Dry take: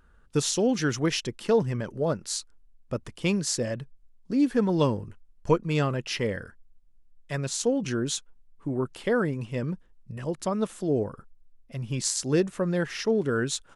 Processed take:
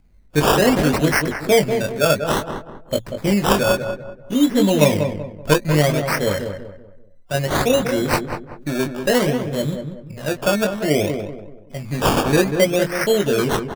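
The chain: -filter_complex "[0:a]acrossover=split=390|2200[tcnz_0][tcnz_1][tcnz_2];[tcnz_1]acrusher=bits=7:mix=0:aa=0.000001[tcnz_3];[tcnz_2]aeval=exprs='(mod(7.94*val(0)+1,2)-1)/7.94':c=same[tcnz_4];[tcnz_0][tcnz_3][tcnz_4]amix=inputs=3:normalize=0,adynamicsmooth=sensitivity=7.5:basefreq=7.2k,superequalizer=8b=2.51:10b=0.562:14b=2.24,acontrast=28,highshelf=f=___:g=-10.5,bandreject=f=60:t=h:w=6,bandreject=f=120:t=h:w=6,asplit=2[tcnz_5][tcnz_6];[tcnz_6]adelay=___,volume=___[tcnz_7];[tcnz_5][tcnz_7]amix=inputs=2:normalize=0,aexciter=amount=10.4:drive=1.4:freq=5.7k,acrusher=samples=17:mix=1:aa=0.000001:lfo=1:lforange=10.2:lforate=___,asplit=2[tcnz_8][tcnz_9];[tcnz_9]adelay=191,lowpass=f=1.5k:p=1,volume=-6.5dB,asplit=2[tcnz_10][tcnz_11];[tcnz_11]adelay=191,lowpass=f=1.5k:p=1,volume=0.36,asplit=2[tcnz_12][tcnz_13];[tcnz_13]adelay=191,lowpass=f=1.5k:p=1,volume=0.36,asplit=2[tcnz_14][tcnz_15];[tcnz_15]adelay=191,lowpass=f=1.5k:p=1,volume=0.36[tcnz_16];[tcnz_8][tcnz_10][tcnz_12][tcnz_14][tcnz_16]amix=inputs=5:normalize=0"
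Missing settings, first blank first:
4.4k, 20, -4.5dB, 0.59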